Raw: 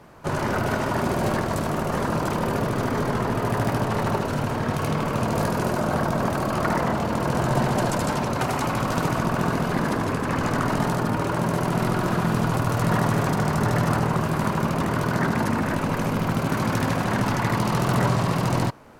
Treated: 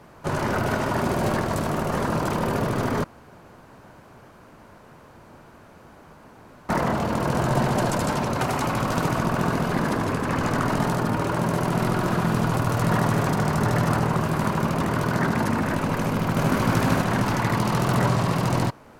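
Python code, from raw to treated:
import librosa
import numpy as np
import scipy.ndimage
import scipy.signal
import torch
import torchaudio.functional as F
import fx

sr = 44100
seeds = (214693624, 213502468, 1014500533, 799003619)

y = fx.echo_throw(x, sr, start_s=15.96, length_s=0.65, ms=400, feedback_pct=35, wet_db=-1.0)
y = fx.edit(y, sr, fx.room_tone_fill(start_s=3.04, length_s=3.65), tone=tone)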